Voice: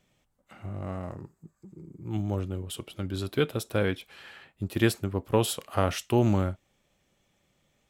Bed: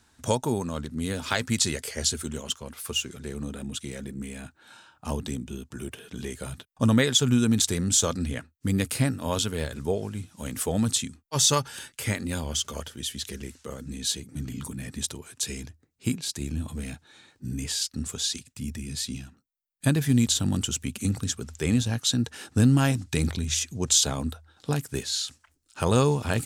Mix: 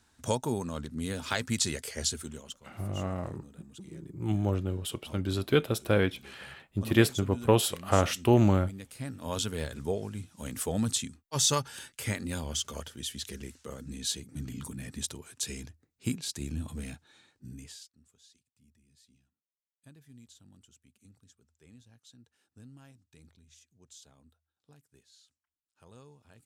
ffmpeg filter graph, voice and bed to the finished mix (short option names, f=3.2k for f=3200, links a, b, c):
-filter_complex "[0:a]adelay=2150,volume=1.5dB[a];[1:a]volume=9.5dB,afade=t=out:st=2.04:d=0.59:silence=0.199526,afade=t=in:st=8.96:d=0.49:silence=0.199526,afade=t=out:st=16.84:d=1.09:silence=0.0398107[b];[a][b]amix=inputs=2:normalize=0"